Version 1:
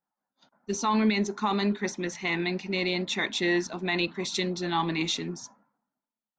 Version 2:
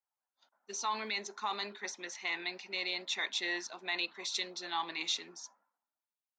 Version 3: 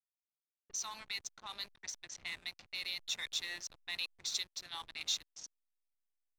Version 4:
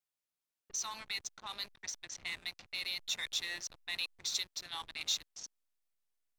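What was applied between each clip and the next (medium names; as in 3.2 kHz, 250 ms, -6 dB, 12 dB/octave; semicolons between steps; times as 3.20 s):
high-pass 630 Hz 12 dB/octave; dynamic bell 4.6 kHz, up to +4 dB, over -46 dBFS, Q 1.1; trim -7 dB
pre-emphasis filter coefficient 0.97; hysteresis with a dead band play -46 dBFS; level-controlled noise filter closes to 1.8 kHz, open at -44 dBFS; trim +4.5 dB
vibrato 1.4 Hz 12 cents; in parallel at -8 dB: saturation -38 dBFS, distortion -8 dB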